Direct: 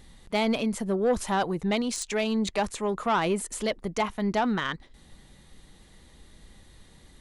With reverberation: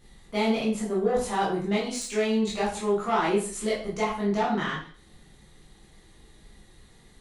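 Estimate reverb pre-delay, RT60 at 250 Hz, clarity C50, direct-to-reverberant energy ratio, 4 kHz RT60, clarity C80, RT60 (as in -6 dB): 6 ms, 0.45 s, 5.0 dB, -8.0 dB, 0.45 s, 9.0 dB, 0.45 s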